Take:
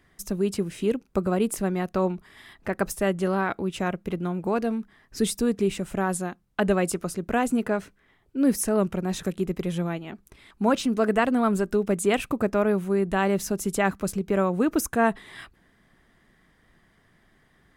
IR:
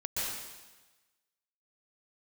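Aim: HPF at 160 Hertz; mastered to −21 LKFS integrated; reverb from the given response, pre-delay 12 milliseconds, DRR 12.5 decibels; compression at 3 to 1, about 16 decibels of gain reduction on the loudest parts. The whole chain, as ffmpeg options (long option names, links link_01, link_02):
-filter_complex "[0:a]highpass=160,acompressor=threshold=-40dB:ratio=3,asplit=2[link_01][link_02];[1:a]atrim=start_sample=2205,adelay=12[link_03];[link_02][link_03]afir=irnorm=-1:irlink=0,volume=-18dB[link_04];[link_01][link_04]amix=inputs=2:normalize=0,volume=19dB"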